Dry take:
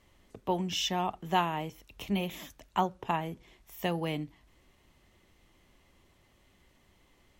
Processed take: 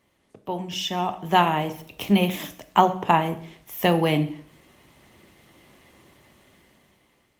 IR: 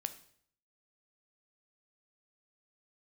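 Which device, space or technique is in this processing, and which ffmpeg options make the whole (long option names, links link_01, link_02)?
far-field microphone of a smart speaker: -filter_complex "[1:a]atrim=start_sample=2205[link_01];[0:a][link_01]afir=irnorm=-1:irlink=0,highpass=110,dynaudnorm=framelen=500:gausssize=5:maxgain=13.5dB,volume=1.5dB" -ar 48000 -c:a libopus -b:a 32k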